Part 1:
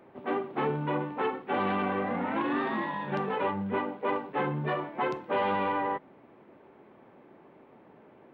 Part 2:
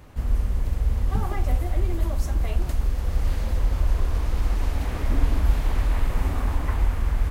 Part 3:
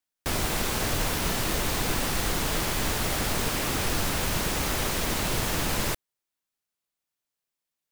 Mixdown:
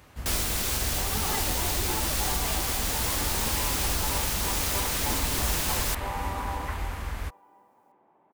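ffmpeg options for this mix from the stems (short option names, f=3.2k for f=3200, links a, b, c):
-filter_complex "[0:a]equalizer=f=870:w=1.7:g=12.5,adelay=700,volume=-15.5dB,asplit=2[a][b];[b]volume=-10dB[c];[1:a]highpass=54,tiltshelf=f=820:g=-4.5,volume=-2.5dB[d];[2:a]highshelf=f=3k:g=10,alimiter=limit=-13dB:level=0:latency=1:release=466,volume=-4.5dB[e];[c]aecho=0:1:344|688|1032|1376|1720|2064:1|0.44|0.194|0.0852|0.0375|0.0165[f];[a][d][e][f]amix=inputs=4:normalize=0"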